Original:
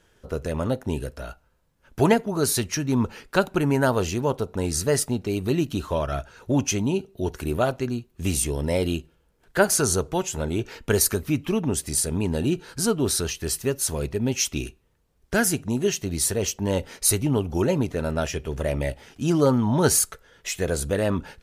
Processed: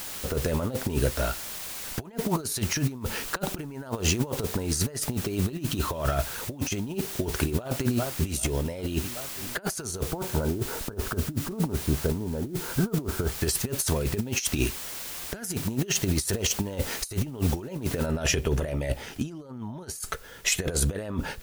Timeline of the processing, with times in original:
7.59–8.3 echo throw 0.39 s, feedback 70%, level -18 dB
10.04–13.4 steep low-pass 1600 Hz 96 dB/oct
18.06 noise floor step -45 dB -62 dB
whole clip: negative-ratio compressor -29 dBFS, ratio -0.5; gain +2 dB

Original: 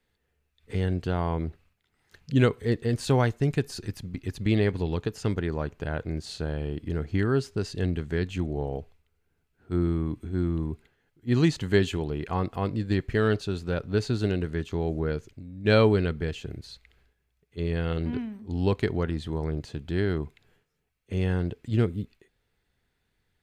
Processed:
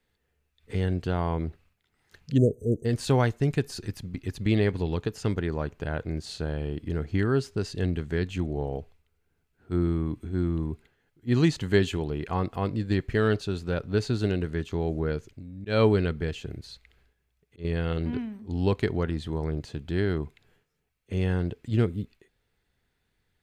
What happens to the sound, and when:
2.37–2.85 spectral delete 710–5800 Hz
15.49–17.65 auto swell 0.192 s

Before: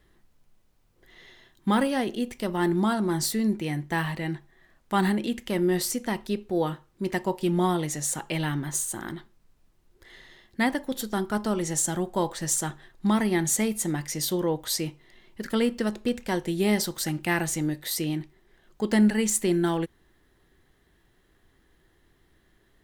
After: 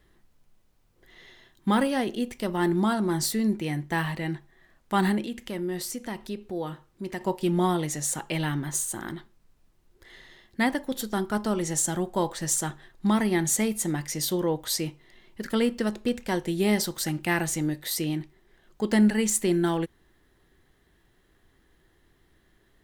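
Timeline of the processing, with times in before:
5.23–7.21 compressor 1.5:1, threshold -39 dBFS

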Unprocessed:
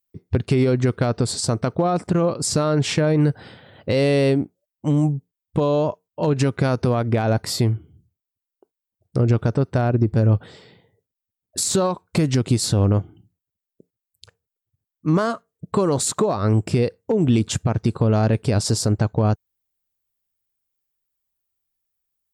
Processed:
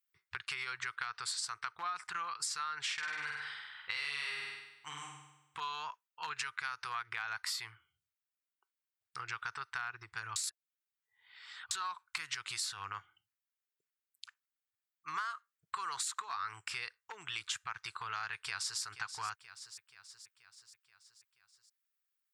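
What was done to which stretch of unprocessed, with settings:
2.93–5.59 flutter echo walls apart 8.4 m, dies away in 0.93 s
10.36–11.71 reverse
18.33–18.81 echo throw 0.48 s, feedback 60%, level -14 dB
whole clip: inverse Chebyshev high-pass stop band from 630 Hz, stop band 40 dB; high shelf 3100 Hz -11.5 dB; compressor 10:1, threshold -38 dBFS; gain +3.5 dB

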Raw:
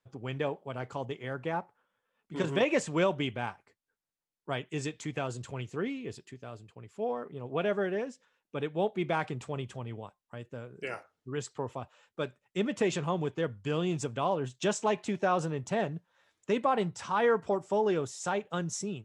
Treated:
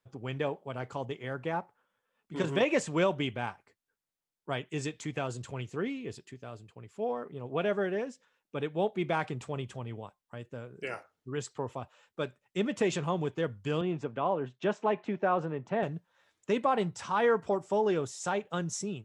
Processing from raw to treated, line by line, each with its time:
13.81–15.83 BPF 160–2200 Hz

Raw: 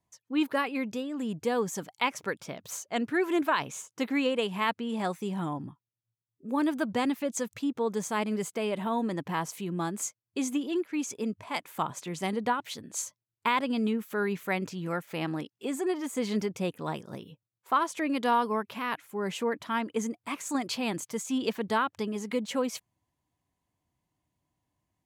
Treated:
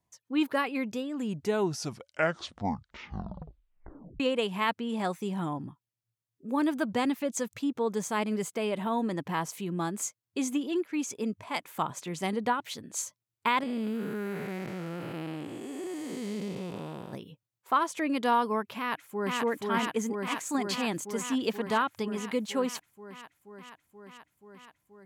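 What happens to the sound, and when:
1.15 tape stop 3.05 s
13.63–17.13 time blur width 0.431 s
18.78–19.37 echo throw 0.48 s, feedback 80%, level -1 dB

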